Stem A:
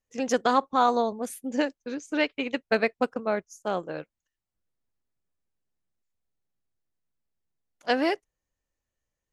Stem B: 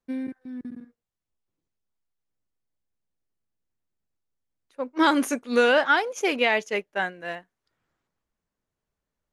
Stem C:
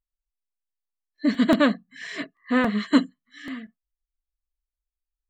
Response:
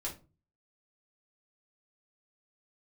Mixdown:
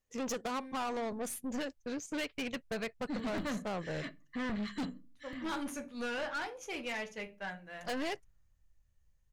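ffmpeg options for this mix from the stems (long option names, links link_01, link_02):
-filter_complex "[0:a]acompressor=threshold=-24dB:ratio=6,volume=1dB,asplit=2[link_01][link_02];[1:a]adelay=450,volume=-15dB,asplit=2[link_03][link_04];[link_04]volume=-3dB[link_05];[2:a]agate=range=-28dB:threshold=-48dB:ratio=16:detection=peak,adelay=1850,volume=-9dB,asplit=2[link_06][link_07];[link_07]volume=-13dB[link_08];[link_02]apad=whole_len=315165[link_09];[link_06][link_09]sidechaincompress=threshold=-29dB:ratio=8:attack=39:release=371[link_10];[3:a]atrim=start_sample=2205[link_11];[link_05][link_08]amix=inputs=2:normalize=0[link_12];[link_12][link_11]afir=irnorm=-1:irlink=0[link_13];[link_01][link_03][link_10][link_13]amix=inputs=4:normalize=0,asubboost=boost=8:cutoff=120,aeval=exprs='(tanh(44.7*val(0)+0.25)-tanh(0.25))/44.7':channel_layout=same"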